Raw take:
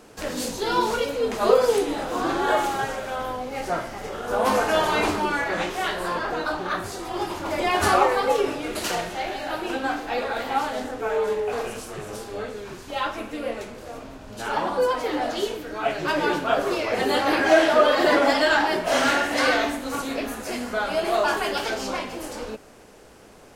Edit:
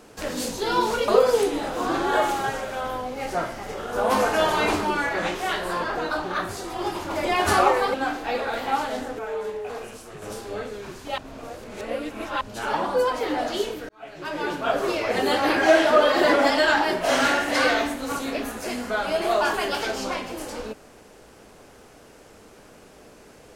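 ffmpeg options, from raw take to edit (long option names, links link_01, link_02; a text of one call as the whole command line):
ffmpeg -i in.wav -filter_complex "[0:a]asplit=8[link_01][link_02][link_03][link_04][link_05][link_06][link_07][link_08];[link_01]atrim=end=1.082[link_09];[link_02]atrim=start=1.428:end=8.292[link_10];[link_03]atrim=start=9.768:end=11.022[link_11];[link_04]atrim=start=11.018:end=12.052,asetpts=PTS-STARTPTS,volume=-6dB[link_12];[link_05]atrim=start=12.048:end=13.012[link_13];[link_06]atrim=start=13.008:end=14.242,asetpts=PTS-STARTPTS,areverse[link_14];[link_07]atrim=start=14.238:end=15.72,asetpts=PTS-STARTPTS,afade=type=out:start_time=1.478:duration=0.004:curve=hsin[link_15];[link_08]atrim=start=15.72,asetpts=PTS-STARTPTS,afade=type=in:duration=0.98[link_16];[link_09][link_10]acrossfade=duration=0.004:curve1=hsin:curve2=hsin[link_17];[link_17][link_11]acrossfade=duration=0.004:curve1=hsin:curve2=hsin[link_18];[link_18][link_12]acrossfade=duration=0.004:curve1=hsin:curve2=hsin[link_19];[link_19][link_13]acrossfade=duration=0.004:curve1=hsin:curve2=hsin[link_20];[link_20][link_14]acrossfade=duration=0.004:curve1=hsin:curve2=hsin[link_21];[link_15][link_16]concat=n=2:v=0:a=1[link_22];[link_21][link_22]acrossfade=duration=0.004:curve1=hsin:curve2=hsin" out.wav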